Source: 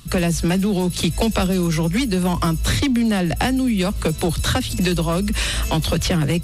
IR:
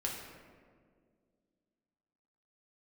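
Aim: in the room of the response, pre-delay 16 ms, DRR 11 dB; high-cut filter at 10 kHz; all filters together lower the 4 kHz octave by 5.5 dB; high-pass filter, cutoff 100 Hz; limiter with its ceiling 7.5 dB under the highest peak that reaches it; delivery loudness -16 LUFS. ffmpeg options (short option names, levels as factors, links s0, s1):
-filter_complex "[0:a]highpass=100,lowpass=10000,equalizer=f=4000:t=o:g=-7,alimiter=limit=0.168:level=0:latency=1,asplit=2[s0][s1];[1:a]atrim=start_sample=2205,adelay=16[s2];[s1][s2]afir=irnorm=-1:irlink=0,volume=0.211[s3];[s0][s3]amix=inputs=2:normalize=0,volume=2.24"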